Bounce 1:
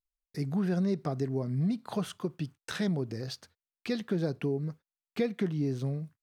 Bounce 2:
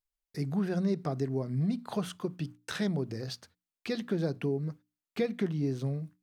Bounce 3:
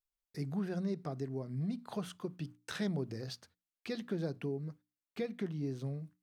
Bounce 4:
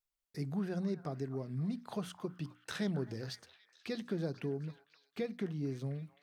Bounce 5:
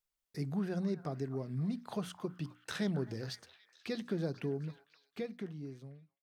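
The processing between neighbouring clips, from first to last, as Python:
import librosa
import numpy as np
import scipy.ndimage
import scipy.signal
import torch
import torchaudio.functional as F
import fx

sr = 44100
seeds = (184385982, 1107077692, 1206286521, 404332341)

y1 = fx.hum_notches(x, sr, base_hz=60, count=5)
y2 = fx.rider(y1, sr, range_db=5, speed_s=2.0)
y2 = F.gain(torch.from_numpy(y2), -7.0).numpy()
y3 = fx.echo_stepped(y2, sr, ms=261, hz=1100.0, octaves=0.7, feedback_pct=70, wet_db=-10)
y4 = fx.fade_out_tail(y3, sr, length_s=1.46)
y4 = F.gain(torch.from_numpy(y4), 1.0).numpy()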